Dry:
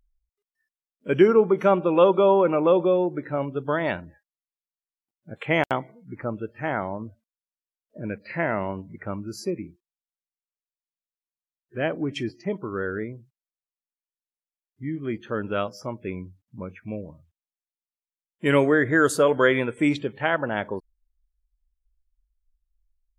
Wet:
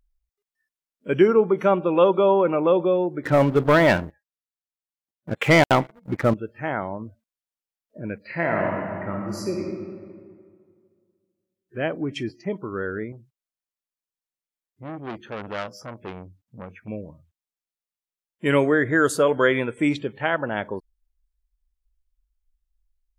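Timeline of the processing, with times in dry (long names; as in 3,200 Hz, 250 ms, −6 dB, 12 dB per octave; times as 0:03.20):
0:03.24–0:06.34: leveller curve on the samples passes 3
0:08.26–0:09.63: thrown reverb, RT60 2.1 s, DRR 0 dB
0:13.12–0:16.88: saturating transformer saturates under 2,300 Hz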